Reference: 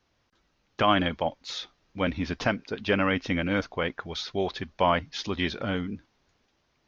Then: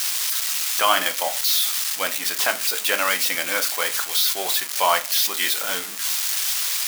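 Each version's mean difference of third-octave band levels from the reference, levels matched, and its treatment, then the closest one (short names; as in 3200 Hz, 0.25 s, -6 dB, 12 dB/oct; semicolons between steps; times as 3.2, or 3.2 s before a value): 19.0 dB: switching spikes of -19 dBFS; HPF 800 Hz 12 dB/oct; shoebox room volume 160 m³, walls furnished, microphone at 0.65 m; gain +6 dB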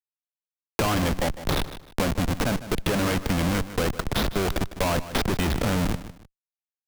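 14.5 dB: Schmitt trigger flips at -30.5 dBFS; feedback echo 0.153 s, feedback 18%, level -16 dB; three-band squash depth 70%; gain +6 dB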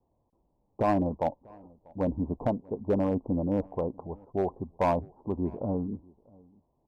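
9.0 dB: steep low-pass 1000 Hz 72 dB/oct; hard clip -18.5 dBFS, distortion -18 dB; outdoor echo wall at 110 m, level -26 dB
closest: third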